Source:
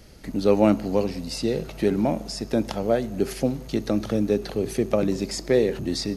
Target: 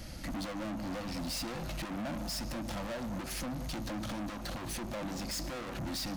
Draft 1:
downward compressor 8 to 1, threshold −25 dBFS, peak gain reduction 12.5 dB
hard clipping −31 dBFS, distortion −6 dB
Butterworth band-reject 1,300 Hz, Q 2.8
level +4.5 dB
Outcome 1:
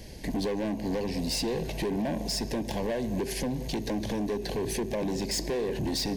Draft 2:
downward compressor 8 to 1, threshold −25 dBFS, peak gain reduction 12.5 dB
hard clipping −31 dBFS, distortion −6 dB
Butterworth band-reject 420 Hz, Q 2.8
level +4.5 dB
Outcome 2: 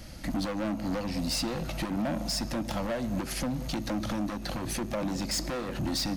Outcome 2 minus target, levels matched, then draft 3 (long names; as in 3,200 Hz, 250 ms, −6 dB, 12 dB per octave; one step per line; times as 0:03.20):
hard clipping: distortion −4 dB
downward compressor 8 to 1, threshold −25 dBFS, peak gain reduction 12.5 dB
hard clipping −40 dBFS, distortion −2 dB
Butterworth band-reject 420 Hz, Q 2.8
level +4.5 dB